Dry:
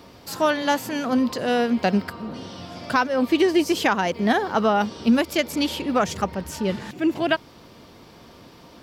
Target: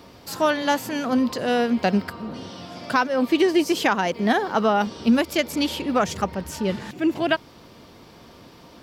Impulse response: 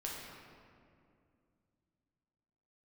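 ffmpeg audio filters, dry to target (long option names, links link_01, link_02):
-filter_complex "[0:a]asettb=1/sr,asplit=3[link_01][link_02][link_03];[link_01]atrim=end=2.504[link_04];[link_02]atrim=start=2.5:end=4.87,asetpts=PTS-STARTPTS,afade=type=in:duration=0.004:curve=qsin,afade=type=out:start_time=2.366:duration=0.004:curve=qsin,highpass=120[link_05];[link_03]atrim=start=4.866[link_06];[link_04][link_05]acrossfade=duration=0.004:curve1=hsin:curve2=qsin[link_07];[link_07][link_06]acrossfade=duration=0.004:curve1=qsin:curve2=hsin"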